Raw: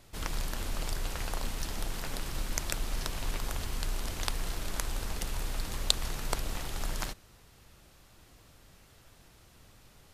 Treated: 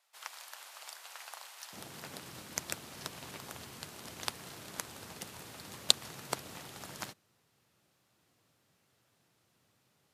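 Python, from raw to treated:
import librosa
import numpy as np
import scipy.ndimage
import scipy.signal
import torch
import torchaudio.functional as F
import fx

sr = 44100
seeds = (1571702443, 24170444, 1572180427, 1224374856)

y = fx.highpass(x, sr, hz=fx.steps((0.0, 720.0), (1.73, 110.0)), slope=24)
y = fx.upward_expand(y, sr, threshold_db=-53.0, expansion=1.5)
y = F.gain(torch.from_numpy(y), 2.0).numpy()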